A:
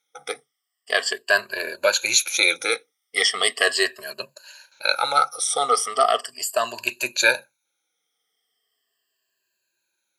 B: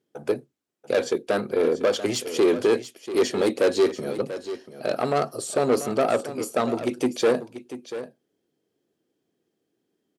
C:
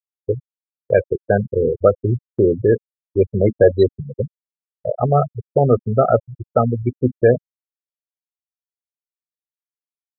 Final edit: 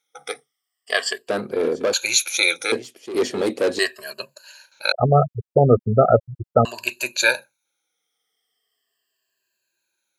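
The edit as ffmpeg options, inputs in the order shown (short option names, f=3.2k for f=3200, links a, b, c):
-filter_complex "[1:a]asplit=2[a][b];[0:a]asplit=4[c][d][e][f];[c]atrim=end=1.282[g];[a]atrim=start=1.278:end=1.932[h];[d]atrim=start=1.928:end=2.722[i];[b]atrim=start=2.718:end=3.792[j];[e]atrim=start=3.788:end=4.922[k];[2:a]atrim=start=4.918:end=6.652[l];[f]atrim=start=6.648[m];[g][h]acrossfade=d=0.004:c1=hsin:c2=hsin[n];[n][i]acrossfade=d=0.004:c1=hsin:c2=hsin[o];[o][j]acrossfade=d=0.004:c1=hsin:c2=hsin[p];[p][k]acrossfade=d=0.004:c1=hsin:c2=hsin[q];[q][l]acrossfade=d=0.004:c1=hsin:c2=hsin[r];[r][m]acrossfade=d=0.004:c1=hsin:c2=hsin"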